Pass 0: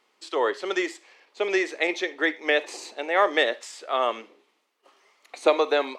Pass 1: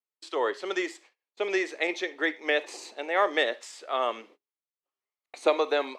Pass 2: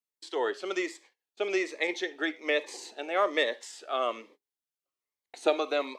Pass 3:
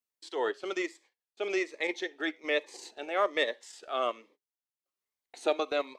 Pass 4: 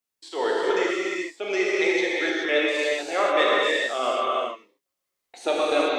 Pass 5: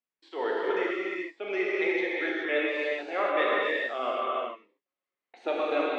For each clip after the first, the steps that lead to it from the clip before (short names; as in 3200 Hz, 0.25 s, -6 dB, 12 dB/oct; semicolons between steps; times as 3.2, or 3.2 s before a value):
gate -49 dBFS, range -32 dB; gain -3.5 dB
cascading phaser falling 1.2 Hz
transient shaper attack -4 dB, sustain -8 dB
non-linear reverb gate 0.46 s flat, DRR -6 dB; gain +3 dB
Chebyshev band-pass 200–2400 Hz, order 2; gain -4.5 dB